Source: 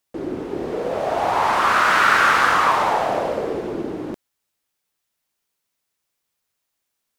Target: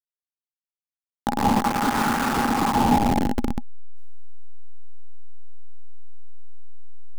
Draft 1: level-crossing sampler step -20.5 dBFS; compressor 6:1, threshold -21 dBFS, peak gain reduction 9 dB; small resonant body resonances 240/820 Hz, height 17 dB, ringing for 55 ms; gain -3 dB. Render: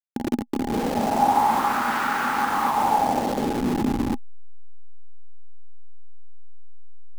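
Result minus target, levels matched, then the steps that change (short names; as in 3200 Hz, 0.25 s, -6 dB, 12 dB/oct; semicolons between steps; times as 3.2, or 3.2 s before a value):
level-crossing sampler: distortion -14 dB
change: level-crossing sampler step -10.5 dBFS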